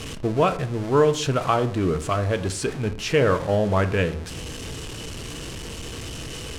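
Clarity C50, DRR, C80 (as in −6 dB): 15.0 dB, 8.5 dB, 19.0 dB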